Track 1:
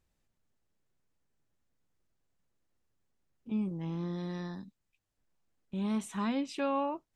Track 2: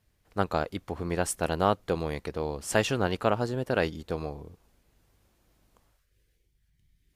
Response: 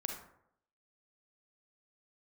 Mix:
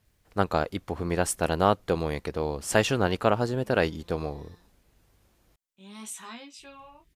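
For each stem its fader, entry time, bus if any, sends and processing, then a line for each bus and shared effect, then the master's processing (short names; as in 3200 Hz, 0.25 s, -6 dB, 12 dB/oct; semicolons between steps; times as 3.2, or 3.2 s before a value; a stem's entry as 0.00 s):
+1.5 dB, 0.05 s, no send, chorus 0.63 Hz, delay 17 ms, depth 4.5 ms; tilt +4 dB/oct; auto duck -15 dB, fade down 0.80 s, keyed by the second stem
+2.5 dB, 0.00 s, muted 5.56–6.59, no send, dry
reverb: off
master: dry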